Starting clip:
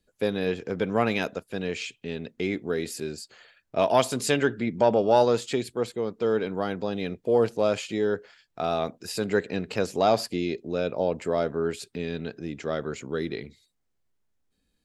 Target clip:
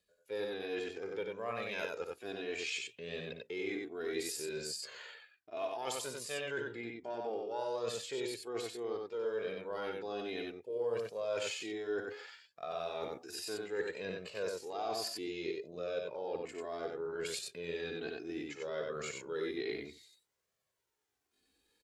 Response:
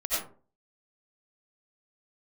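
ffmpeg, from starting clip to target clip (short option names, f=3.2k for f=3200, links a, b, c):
-af "highpass=f=400:p=1,areverse,acompressor=threshold=-40dB:ratio=6,areverse,flanger=delay=1.6:depth=1.3:regen=7:speed=0.93:shape=triangular,atempo=0.68,aecho=1:1:58.31|93.29:0.282|0.708,volume=5dB"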